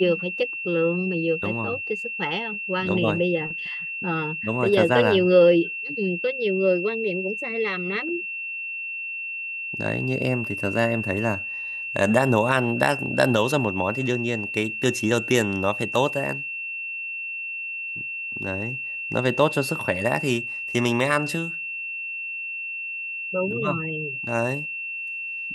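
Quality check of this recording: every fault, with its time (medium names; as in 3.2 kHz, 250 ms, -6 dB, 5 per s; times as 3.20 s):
whine 2.7 kHz -29 dBFS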